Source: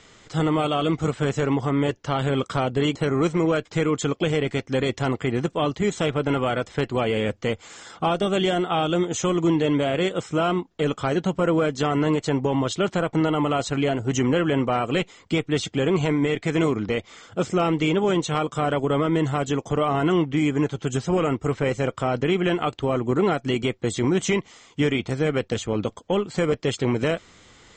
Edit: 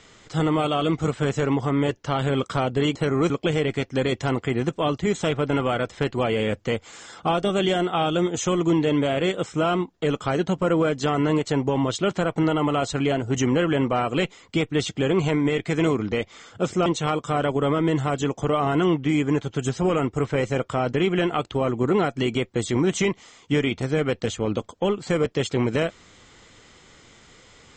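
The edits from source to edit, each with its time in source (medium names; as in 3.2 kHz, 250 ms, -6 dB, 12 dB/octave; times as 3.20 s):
3.30–4.07 s: delete
17.63–18.14 s: delete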